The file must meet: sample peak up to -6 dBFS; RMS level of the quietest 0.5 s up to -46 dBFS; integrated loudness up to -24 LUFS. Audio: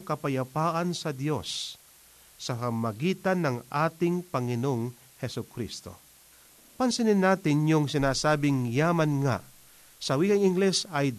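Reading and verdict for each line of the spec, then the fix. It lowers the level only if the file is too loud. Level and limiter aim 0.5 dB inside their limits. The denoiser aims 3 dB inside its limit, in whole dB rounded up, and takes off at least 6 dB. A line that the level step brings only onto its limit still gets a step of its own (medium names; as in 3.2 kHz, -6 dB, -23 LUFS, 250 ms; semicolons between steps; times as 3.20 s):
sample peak -11.5 dBFS: pass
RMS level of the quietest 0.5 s -56 dBFS: pass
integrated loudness -27.5 LUFS: pass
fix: none needed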